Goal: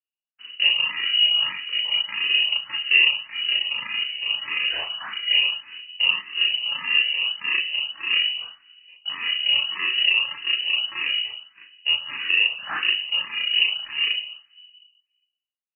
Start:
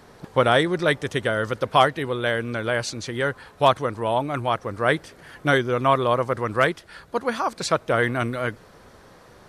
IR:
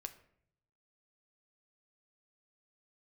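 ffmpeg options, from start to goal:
-filter_complex "[0:a]highpass=73,agate=range=-54dB:threshold=-40dB:ratio=16:detection=peak,bandreject=frequency=60:width_type=h:width=6,bandreject=frequency=120:width_type=h:width=6,bandreject=frequency=180:width_type=h:width=6,bandreject=frequency=240:width_type=h:width=6,bandreject=frequency=300:width_type=h:width=6,bandreject=frequency=360:width_type=h:width=6,bandreject=frequency=420:width_type=h:width=6,bandreject=frequency=480:width_type=h:width=6,bandreject=frequency=540:width_type=h:width=6,bandreject=frequency=600:width_type=h:width=6,asplit=2[link_01][link_02];[link_02]acrusher=samples=18:mix=1:aa=0.000001,volume=-3.5dB[link_03];[link_01][link_03]amix=inputs=2:normalize=0,asetrate=26548,aresample=44100,flanger=delay=8.9:depth=8.3:regen=-40:speed=0.23:shape=triangular,asetrate=22696,aresample=44100,atempo=1.94306,alimiter=limit=-14dB:level=0:latency=1:release=452,asplit=2[link_04][link_05];[1:a]atrim=start_sample=2205,asetrate=27783,aresample=44100,adelay=36[link_06];[link_05][link_06]afir=irnorm=-1:irlink=0,volume=3dB[link_07];[link_04][link_07]amix=inputs=2:normalize=0,lowpass=frequency=2600:width_type=q:width=0.5098,lowpass=frequency=2600:width_type=q:width=0.6013,lowpass=frequency=2600:width_type=q:width=0.9,lowpass=frequency=2600:width_type=q:width=2.563,afreqshift=-3000,asplit=2[link_08][link_09];[link_09]afreqshift=1.7[link_10];[link_08][link_10]amix=inputs=2:normalize=1,volume=4dB"

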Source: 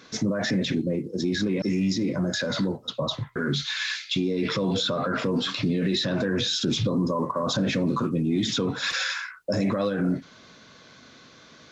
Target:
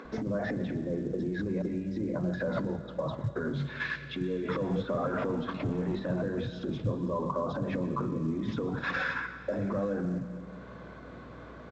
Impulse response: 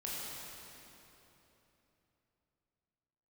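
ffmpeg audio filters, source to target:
-filter_complex "[0:a]asettb=1/sr,asplit=3[link_01][link_02][link_03];[link_01]atrim=end=4.644[link_04];[link_02]atrim=start=4.64:end=6,asetpts=PTS-STARTPTS,afade=type=in:duration=0.004:curve=qsin,afade=type=out:start_time=1.356:duration=0.004:curve=qsin,asoftclip=type=hard:threshold=-21dB[link_05];[link_03]atrim=start=5.996[link_06];[link_04][link_05]acrossfade=duration=0.004:curve1=hsin:curve2=qsin[link_07];[link_07][link_06]acrossfade=duration=0.004:curve1=qsin:curve2=hsin,lowpass=1100,acompressor=mode=upward:threshold=-33dB:ratio=2.5,alimiter=level_in=1dB:limit=-24dB:level=0:latency=1:release=83,volume=-1dB,acompressor=threshold=-33dB:ratio=8,agate=range=-9dB:threshold=-39dB:ratio=16:detection=peak,aeval=exprs='val(0)+0.00126*(sin(2*PI*60*n/s)+sin(2*PI*2*60*n/s)/2+sin(2*PI*3*60*n/s)/3+sin(2*PI*4*60*n/s)/4+sin(2*PI*5*60*n/s)/5)':channel_layout=same,acrossover=split=220[link_08][link_09];[link_08]adelay=50[link_10];[link_10][link_09]amix=inputs=2:normalize=0,asplit=2[link_11][link_12];[1:a]atrim=start_sample=2205,adelay=123[link_13];[link_12][link_13]afir=irnorm=-1:irlink=0,volume=-14.5dB[link_14];[link_11][link_14]amix=inputs=2:normalize=0,volume=6.5dB" -ar 16000 -c:a pcm_mulaw

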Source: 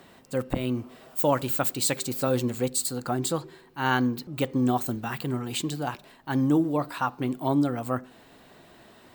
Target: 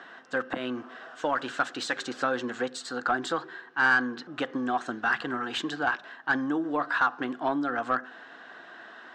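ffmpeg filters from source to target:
ffmpeg -i in.wav -filter_complex "[0:a]acompressor=threshold=-24dB:ratio=6,highpass=360,equalizer=frequency=400:width_type=q:width=4:gain=-7,equalizer=frequency=570:width_type=q:width=4:gain=-9,equalizer=frequency=910:width_type=q:width=4:gain=-6,equalizer=frequency=1600:width_type=q:width=4:gain=10,equalizer=frequency=2300:width_type=q:width=4:gain=-9,equalizer=frequency=4500:width_type=q:width=4:gain=-6,lowpass=frequency=6000:width=0.5412,lowpass=frequency=6000:width=1.3066,asplit=2[link_01][link_02];[link_02]highpass=frequency=720:poles=1,volume=12dB,asoftclip=type=tanh:threshold=-17dB[link_03];[link_01][link_03]amix=inputs=2:normalize=0,lowpass=frequency=1400:poles=1,volume=-6dB,volume=5.5dB" out.wav

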